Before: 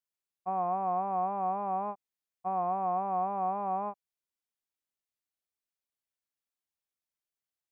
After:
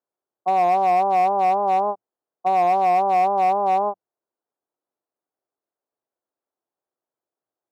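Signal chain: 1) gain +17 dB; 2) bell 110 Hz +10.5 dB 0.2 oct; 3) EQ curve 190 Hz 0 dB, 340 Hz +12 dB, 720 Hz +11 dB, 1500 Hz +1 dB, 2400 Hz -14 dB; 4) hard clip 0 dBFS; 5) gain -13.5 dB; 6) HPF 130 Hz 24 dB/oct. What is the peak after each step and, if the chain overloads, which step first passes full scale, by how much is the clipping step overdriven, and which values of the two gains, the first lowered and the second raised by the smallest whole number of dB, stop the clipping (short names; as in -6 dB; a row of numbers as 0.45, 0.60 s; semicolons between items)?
-5.0, -5.0, +5.0, 0.0, -13.5, -10.0 dBFS; step 3, 5.0 dB; step 1 +12 dB, step 5 -8.5 dB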